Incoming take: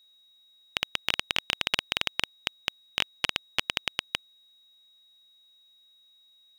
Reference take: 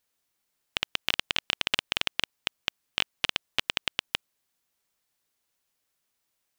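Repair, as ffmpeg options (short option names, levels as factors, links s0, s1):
-af "bandreject=f=3800:w=30"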